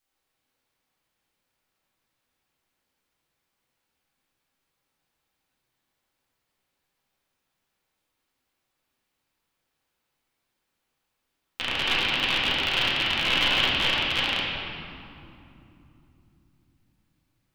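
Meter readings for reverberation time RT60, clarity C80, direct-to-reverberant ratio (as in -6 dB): 3.0 s, 0.5 dB, -8.5 dB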